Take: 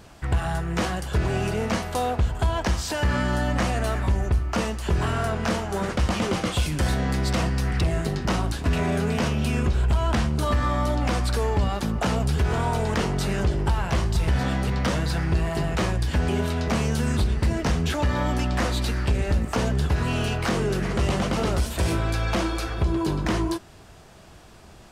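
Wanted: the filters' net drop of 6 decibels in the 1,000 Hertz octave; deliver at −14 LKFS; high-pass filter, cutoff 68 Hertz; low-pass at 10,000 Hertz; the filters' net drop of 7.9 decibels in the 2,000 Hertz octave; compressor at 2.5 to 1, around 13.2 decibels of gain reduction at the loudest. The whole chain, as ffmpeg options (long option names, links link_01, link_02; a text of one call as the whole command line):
ffmpeg -i in.wav -af "highpass=68,lowpass=10000,equalizer=frequency=1000:width_type=o:gain=-6,equalizer=frequency=2000:width_type=o:gain=-8.5,acompressor=threshold=-41dB:ratio=2.5,volume=25dB" out.wav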